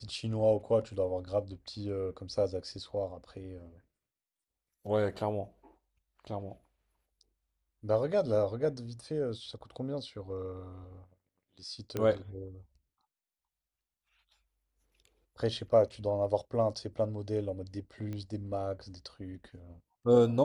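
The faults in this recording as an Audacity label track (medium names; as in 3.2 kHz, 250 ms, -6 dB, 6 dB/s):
11.970000	11.970000	pop -19 dBFS
18.130000	18.130000	pop -28 dBFS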